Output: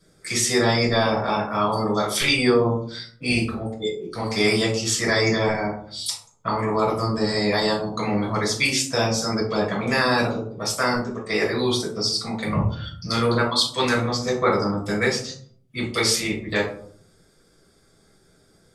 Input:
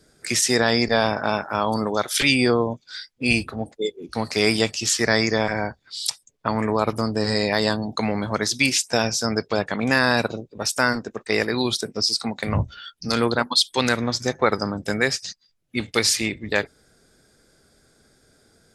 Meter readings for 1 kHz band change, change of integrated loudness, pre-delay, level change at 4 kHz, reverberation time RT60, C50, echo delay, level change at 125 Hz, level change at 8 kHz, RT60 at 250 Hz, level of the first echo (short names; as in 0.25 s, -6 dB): +1.0 dB, -0.5 dB, 6 ms, -1.0 dB, 0.55 s, 6.0 dB, none, +2.5 dB, -1.5 dB, 0.80 s, none